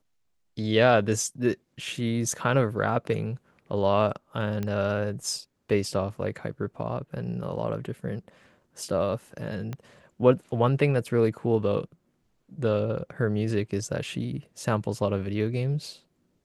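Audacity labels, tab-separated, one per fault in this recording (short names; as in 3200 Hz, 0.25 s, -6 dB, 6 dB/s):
4.630000	4.630000	pop -18 dBFS
9.730000	9.730000	pop -21 dBFS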